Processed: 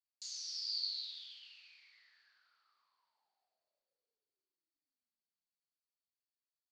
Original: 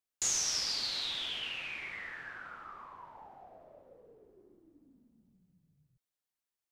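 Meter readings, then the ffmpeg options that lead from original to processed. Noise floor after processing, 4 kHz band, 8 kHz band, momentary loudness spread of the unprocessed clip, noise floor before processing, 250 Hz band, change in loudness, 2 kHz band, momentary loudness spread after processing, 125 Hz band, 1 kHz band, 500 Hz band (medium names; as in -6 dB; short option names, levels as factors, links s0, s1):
under -85 dBFS, -6.5 dB, -17.5 dB, 22 LU, under -85 dBFS, under -40 dB, -5.5 dB, -23.5 dB, 18 LU, under -40 dB, -32.0 dB, under -35 dB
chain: -af "bandpass=f=4500:t=q:w=11:csg=0,volume=1.12"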